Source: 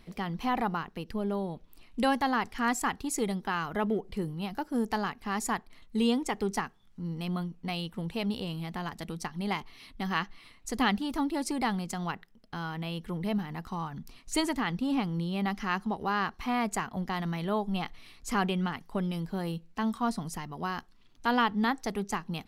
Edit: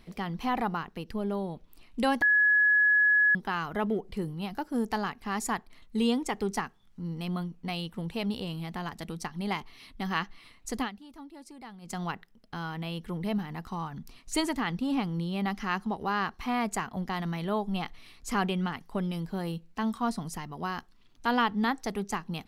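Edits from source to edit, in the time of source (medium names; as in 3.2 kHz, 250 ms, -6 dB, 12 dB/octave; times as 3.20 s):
2.22–3.35 s: bleep 1.69 kHz -19 dBFS
10.76–11.95 s: dip -16.5 dB, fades 0.14 s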